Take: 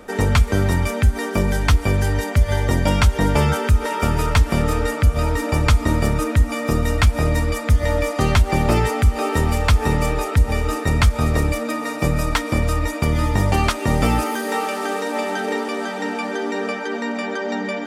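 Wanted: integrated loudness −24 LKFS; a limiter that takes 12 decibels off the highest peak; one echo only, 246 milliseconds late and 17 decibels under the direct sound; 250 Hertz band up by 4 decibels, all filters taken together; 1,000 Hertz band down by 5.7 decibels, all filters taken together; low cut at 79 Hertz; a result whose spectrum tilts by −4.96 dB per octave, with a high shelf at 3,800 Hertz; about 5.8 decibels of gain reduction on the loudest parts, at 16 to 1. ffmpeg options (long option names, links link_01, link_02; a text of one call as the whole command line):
ffmpeg -i in.wav -af "highpass=79,equalizer=frequency=250:width_type=o:gain=5.5,equalizer=frequency=1000:width_type=o:gain=-8.5,highshelf=frequency=3800:gain=7.5,acompressor=threshold=-18dB:ratio=16,alimiter=limit=-17dB:level=0:latency=1,aecho=1:1:246:0.141,volume=2.5dB" out.wav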